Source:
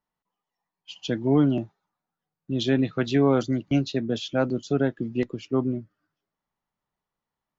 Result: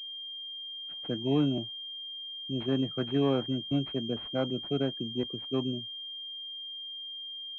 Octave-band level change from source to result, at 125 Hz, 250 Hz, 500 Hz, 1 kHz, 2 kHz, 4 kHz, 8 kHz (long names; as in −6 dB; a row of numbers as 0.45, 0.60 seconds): −6.5 dB, −6.5 dB, −6.5 dB, −7.5 dB, −11.5 dB, +5.5 dB, can't be measured